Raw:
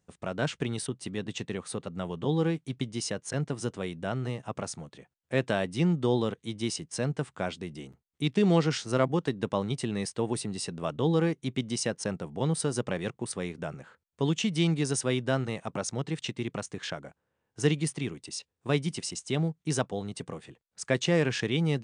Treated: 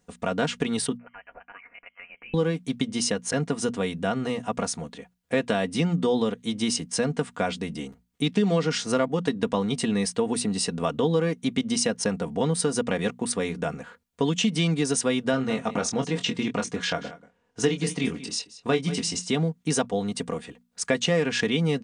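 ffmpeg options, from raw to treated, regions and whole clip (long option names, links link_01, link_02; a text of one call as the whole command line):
ffmpeg -i in.wav -filter_complex "[0:a]asettb=1/sr,asplit=3[link_01][link_02][link_03];[link_01]atrim=end=0.974[link_04];[link_02]atrim=start=0.97:end=2.34,asetpts=PTS-STARTPTS,afade=type=in:duration=0.004:curve=qsin,afade=type=out:start_time=1.366:duration=0.004:curve=qsin,highpass=frequency=910:width=0.5412,highpass=frequency=910:width=1.3066,acompressor=threshold=-53dB:ratio=2:attack=3.2:release=140:knee=1:detection=peak,lowpass=frequency=2900:width_type=q:width=0.5098,lowpass=frequency=2900:width_type=q:width=0.6013,lowpass=frequency=2900:width_type=q:width=0.9,lowpass=frequency=2900:width_type=q:width=2.563,afreqshift=-3400[link_05];[link_03]atrim=start=2.336[link_06];[link_04][link_05]acrossfade=duration=0.004:curve1=hsin:curve2=qsin[link_07];[link_07][link_06]acrossfade=duration=0.004:curve1=qsin:curve2=hsin,asettb=1/sr,asplit=3[link_08][link_09][link_10];[link_08]atrim=end=15.314[link_11];[link_09]atrim=start=15.31:end=19.3,asetpts=PTS-STARTPTS,afade=type=in:duration=0.004:curve=qsin,afade=type=out:start_time=3.986:duration=0.004:curve=qsin,lowpass=7600,asplit=2[link_12][link_13];[link_13]adelay=23,volume=-7.5dB[link_14];[link_12][link_14]amix=inputs=2:normalize=0,atrim=end_sample=175959,aecho=1:1:183:0.141,atrim=end_sample=175959[link_15];[link_10]atrim=start=19.296[link_16];[link_11][link_15]acrossfade=duration=0.004:curve1=hsin:curve2=qsin[link_17];[link_17][link_16]acrossfade=duration=0.004:curve1=qsin:curve2=hsin,bandreject=frequency=60:width_type=h:width=6,bandreject=frequency=120:width_type=h:width=6,bandreject=frequency=180:width_type=h:width=6,bandreject=frequency=240:width_type=h:width=6,aecho=1:1:4.2:0.65,acompressor=threshold=-28dB:ratio=3,volume=7dB" out.wav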